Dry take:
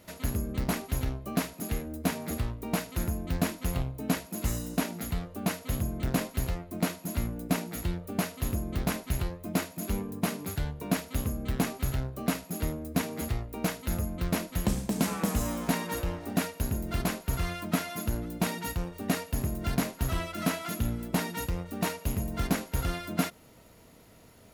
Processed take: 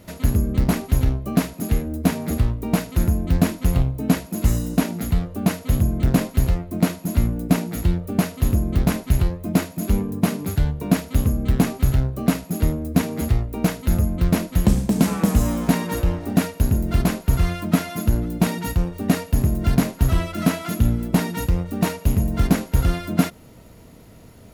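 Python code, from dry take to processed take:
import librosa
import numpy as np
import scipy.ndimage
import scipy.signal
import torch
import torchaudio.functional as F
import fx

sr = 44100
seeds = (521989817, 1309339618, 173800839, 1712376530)

y = fx.low_shelf(x, sr, hz=370.0, db=8.5)
y = y * librosa.db_to_amplitude(4.5)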